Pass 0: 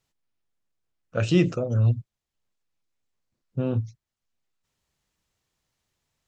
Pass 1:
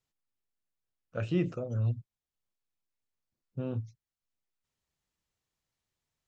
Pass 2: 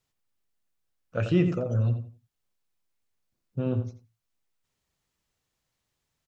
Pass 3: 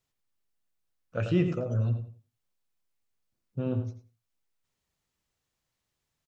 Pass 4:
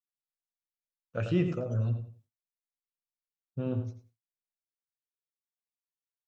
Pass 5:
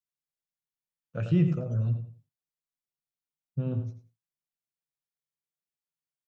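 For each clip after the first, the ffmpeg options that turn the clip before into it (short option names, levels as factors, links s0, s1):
-filter_complex "[0:a]acrossover=split=2800[s0][s1];[s1]acompressor=threshold=0.00355:ratio=4:attack=1:release=60[s2];[s0][s2]amix=inputs=2:normalize=0,volume=0.355"
-filter_complex "[0:a]asplit=2[s0][s1];[s1]adelay=86,lowpass=f=2600:p=1,volume=0.398,asplit=2[s2][s3];[s3]adelay=86,lowpass=f=2600:p=1,volume=0.25,asplit=2[s4][s5];[s5]adelay=86,lowpass=f=2600:p=1,volume=0.25[s6];[s0][s2][s4][s6]amix=inputs=4:normalize=0,volume=2"
-filter_complex "[0:a]asplit=2[s0][s1];[s1]adelay=105,volume=0.2,highshelf=f=4000:g=-2.36[s2];[s0][s2]amix=inputs=2:normalize=0,volume=0.75"
-af "agate=range=0.0224:threshold=0.00224:ratio=3:detection=peak,volume=0.794"
-af "equalizer=f=150:w=2.2:g=13.5,volume=0.668"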